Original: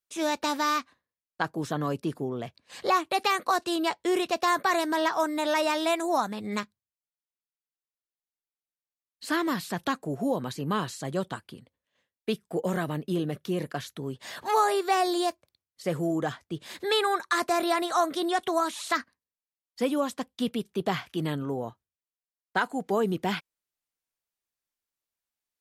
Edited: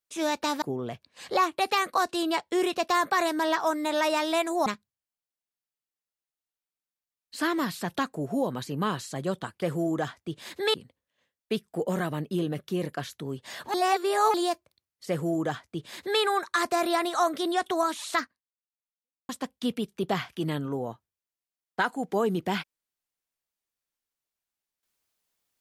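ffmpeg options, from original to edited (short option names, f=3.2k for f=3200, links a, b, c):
-filter_complex "[0:a]asplit=8[a][b][c][d][e][f][g][h];[a]atrim=end=0.622[i];[b]atrim=start=2.148:end=6.192[j];[c]atrim=start=6.548:end=11.512[k];[d]atrim=start=15.858:end=16.982[l];[e]atrim=start=11.508:end=14.512[m];[f]atrim=start=14.508:end=15.112,asetpts=PTS-STARTPTS,areverse[n];[g]atrim=start=15.108:end=20.06,asetpts=PTS-STARTPTS,afade=t=out:st=3.872:d=1.08:c=exp[o];[h]atrim=start=20.06,asetpts=PTS-STARTPTS,afade=t=in:d=0.004:c=hsin[p];[i][j]acrossfade=d=0.004:c1=hsin:c2=hsin[q];[q][k]acrossfade=d=0.004:c1=hsin:c2=hsin[r];[r][l]acrossfade=d=0.004:c1=hsin:c2=hsin[s];[s][m]acrossfade=d=0.004:c1=hsin:c2=hsin[t];[t][n]acrossfade=d=0.004:c1=hsin:c2=hsin[u];[o][p]concat=n=2:v=0:a=1[v];[u][v]acrossfade=d=0.004:c1=hsin:c2=hsin"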